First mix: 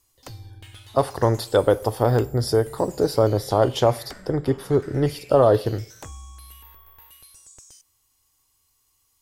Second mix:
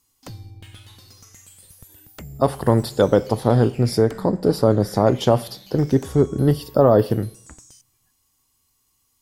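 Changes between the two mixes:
speech: entry +1.45 s; master: add peaking EQ 200 Hz +12 dB 0.87 oct

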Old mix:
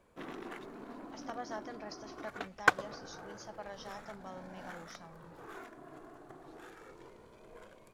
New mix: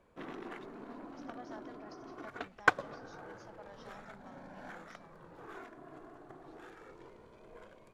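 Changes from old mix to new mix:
speech -8.0 dB; master: add low-pass 3.9 kHz 6 dB/octave

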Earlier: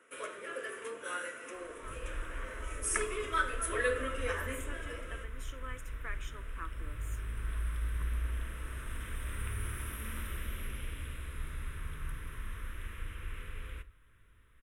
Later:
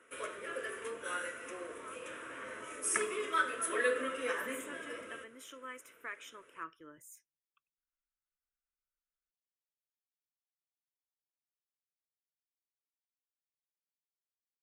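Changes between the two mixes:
second sound: muted; master: add bass shelf 60 Hz +8.5 dB

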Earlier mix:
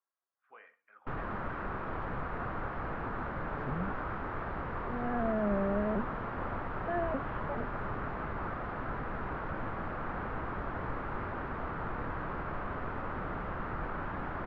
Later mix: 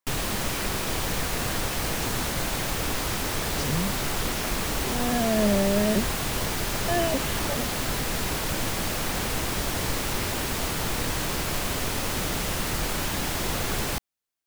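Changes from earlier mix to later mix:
first sound: entry -1.00 s; master: remove four-pole ladder low-pass 1.6 kHz, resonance 45%

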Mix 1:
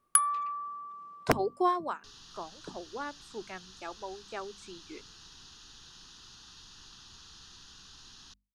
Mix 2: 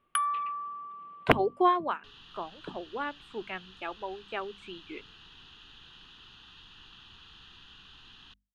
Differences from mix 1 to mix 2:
speech +3.0 dB; master: add resonant high shelf 4.1 kHz -11.5 dB, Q 3

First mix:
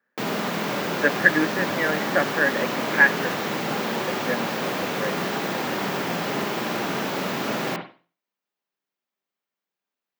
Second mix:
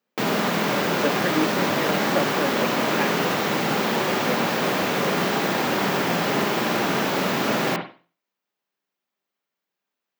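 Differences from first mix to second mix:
speech: remove resonant low-pass 1.7 kHz, resonance Q 8.4; background +4.0 dB

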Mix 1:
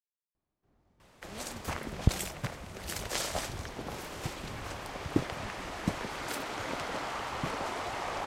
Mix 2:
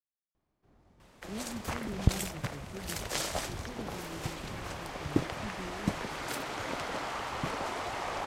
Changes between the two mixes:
speech +9.5 dB; first sound +6.5 dB

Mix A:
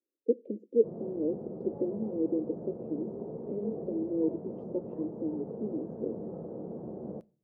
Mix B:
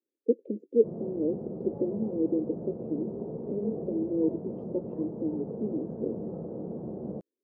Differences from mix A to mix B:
speech: send off; master: add bass shelf 370 Hz +5.5 dB

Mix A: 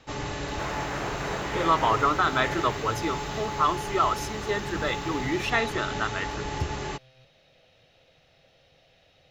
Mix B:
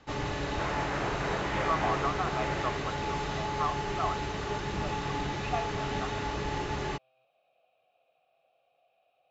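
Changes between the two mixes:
speech: add vowel filter a; master: add distance through air 73 m

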